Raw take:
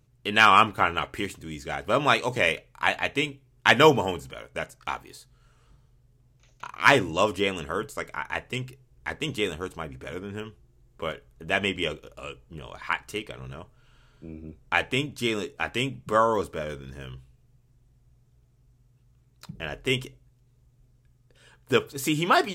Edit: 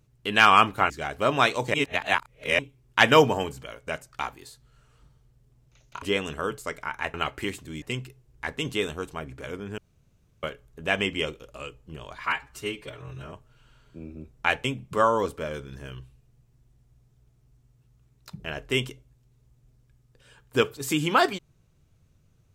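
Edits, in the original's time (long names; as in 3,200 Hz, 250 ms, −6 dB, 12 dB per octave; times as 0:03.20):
0:00.90–0:01.58: move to 0:08.45
0:02.42–0:03.27: reverse
0:06.70–0:07.33: remove
0:10.41–0:11.06: fill with room tone
0:12.89–0:13.60: time-stretch 1.5×
0:14.92–0:15.80: remove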